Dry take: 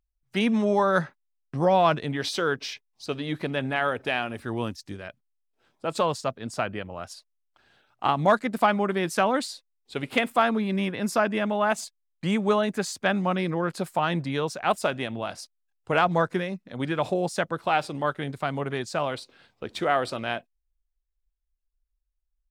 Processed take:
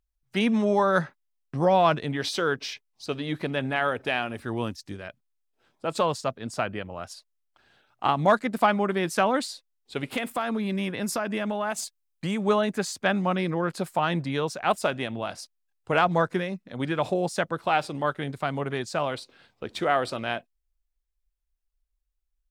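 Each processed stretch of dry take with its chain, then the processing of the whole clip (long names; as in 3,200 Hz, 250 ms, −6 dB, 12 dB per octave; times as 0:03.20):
0:10.11–0:12.43: high-shelf EQ 6,600 Hz +6 dB + downward compressor 4 to 1, threshold −24 dBFS
whole clip: no processing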